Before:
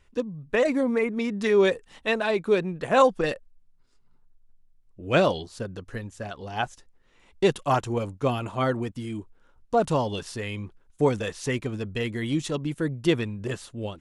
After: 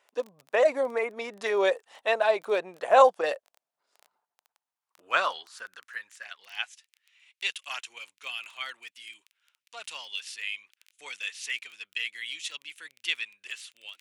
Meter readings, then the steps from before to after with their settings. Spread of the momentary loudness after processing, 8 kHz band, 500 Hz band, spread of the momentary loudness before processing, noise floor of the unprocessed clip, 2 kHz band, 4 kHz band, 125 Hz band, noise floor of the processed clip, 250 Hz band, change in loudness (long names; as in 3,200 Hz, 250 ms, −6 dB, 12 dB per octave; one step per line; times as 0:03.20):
19 LU, −1.5 dB, −3.5 dB, 14 LU, −61 dBFS, 0.0 dB, +1.5 dB, below −30 dB, below −85 dBFS, −19.0 dB, −2.5 dB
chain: surface crackle 14 per second −35 dBFS
high-pass filter sweep 650 Hz → 2,500 Hz, 0:03.99–0:06.80
level −2.5 dB